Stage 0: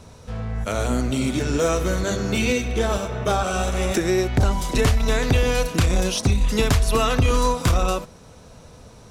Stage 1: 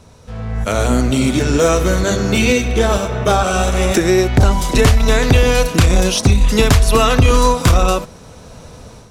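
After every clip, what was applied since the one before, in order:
automatic gain control gain up to 8.5 dB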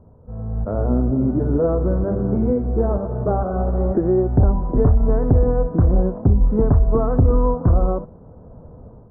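Gaussian smoothing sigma 9.7 samples
level −3 dB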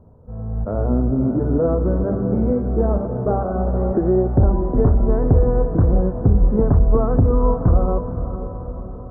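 feedback delay with all-pass diffusion 511 ms, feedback 54%, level −10 dB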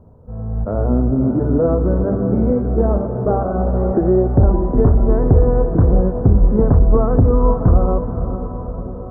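tape delay 565 ms, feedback 75%, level −13 dB, low-pass 1,200 Hz
level +2.5 dB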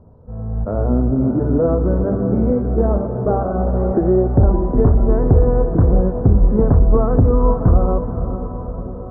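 MP3 24 kbit/s 22,050 Hz

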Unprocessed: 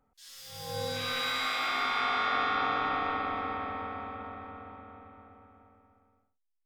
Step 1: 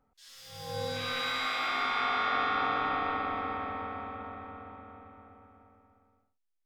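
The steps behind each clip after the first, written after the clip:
high-shelf EQ 6,600 Hz −7.5 dB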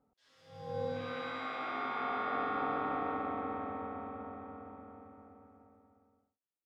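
resonant band-pass 310 Hz, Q 0.58
level +1 dB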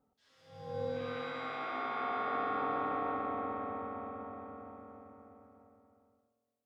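bucket-brigade delay 116 ms, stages 1,024, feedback 67%, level −10 dB
level −1 dB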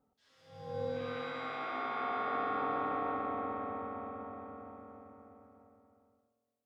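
no processing that can be heard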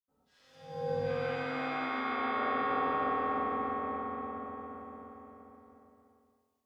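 convolution reverb RT60 1.2 s, pre-delay 77 ms

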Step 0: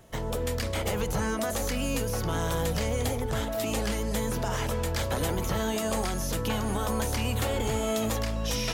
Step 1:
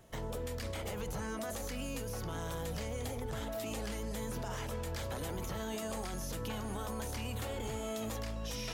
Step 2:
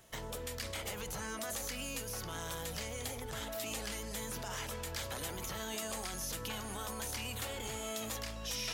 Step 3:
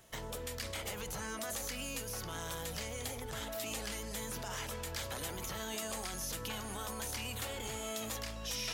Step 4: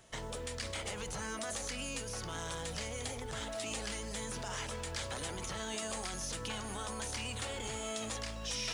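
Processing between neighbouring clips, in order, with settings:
brickwall limiter −25.5 dBFS, peak gain reduction 6.5 dB; level −5.5 dB
tilt shelving filter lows −5.5 dB, about 1,100 Hz
no processing that can be heard
downsampling to 22,050 Hz; floating-point word with a short mantissa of 4 bits; level +1 dB

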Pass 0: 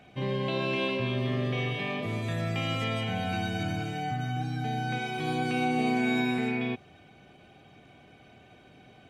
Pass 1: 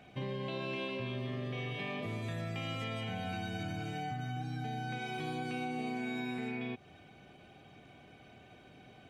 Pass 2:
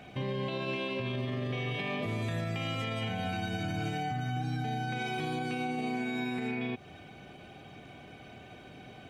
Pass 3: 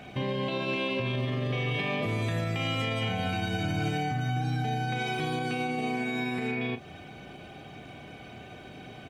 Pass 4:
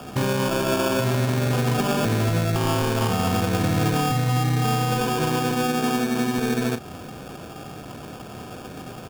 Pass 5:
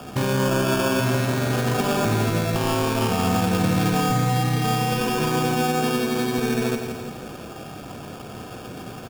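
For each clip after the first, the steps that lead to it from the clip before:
downward compressor 4 to 1, threshold −34 dBFS, peak gain reduction 9.5 dB; level −2 dB
brickwall limiter −32.5 dBFS, peak gain reduction 6 dB; level +7 dB
double-tracking delay 34 ms −11 dB; level +4 dB
decimation without filtering 22×; level +8 dB
repeating echo 167 ms, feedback 54%, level −7.5 dB

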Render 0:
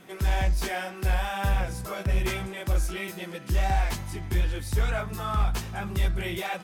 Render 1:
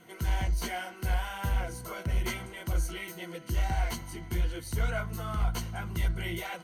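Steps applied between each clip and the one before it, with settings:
harmonic and percussive parts rebalanced percussive +3 dB
EQ curve with evenly spaced ripples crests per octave 1.9, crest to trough 11 dB
level −7 dB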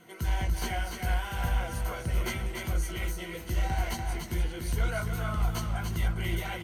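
single-tap delay 291 ms −5 dB
feedback echo with a swinging delay time 375 ms, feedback 66%, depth 126 cents, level −17 dB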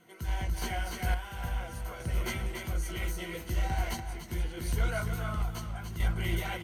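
sample-and-hold tremolo

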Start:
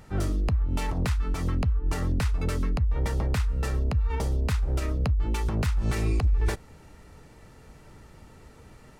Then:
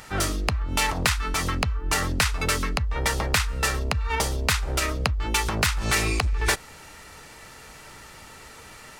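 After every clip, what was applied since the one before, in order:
tilt shelving filter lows −9 dB, about 650 Hz
level +6.5 dB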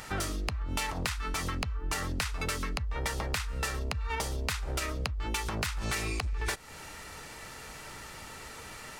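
downward compressor 4 to 1, threshold −31 dBFS, peak gain reduction 12 dB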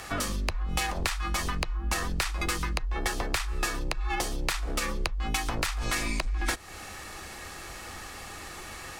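frequency shifter −98 Hz
level +3.5 dB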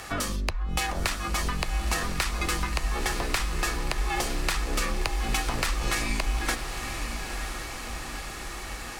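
feedback delay with all-pass diffusion 962 ms, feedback 60%, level −7 dB
level +1 dB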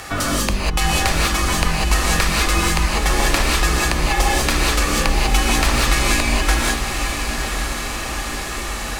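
reverb whose tail is shaped and stops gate 220 ms rising, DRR −2.5 dB
level +6.5 dB

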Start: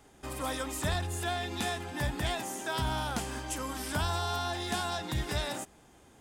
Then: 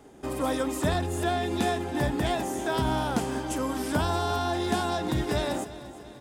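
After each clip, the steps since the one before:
parametric band 340 Hz +11 dB 2.6 octaves
repeating echo 345 ms, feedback 57%, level −16 dB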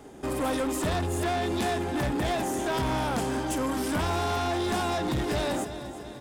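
soft clipping −28.5 dBFS, distortion −9 dB
level +4.5 dB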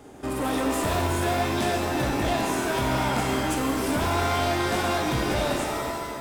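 reverb with rising layers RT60 1.3 s, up +7 semitones, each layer −2 dB, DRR 2.5 dB

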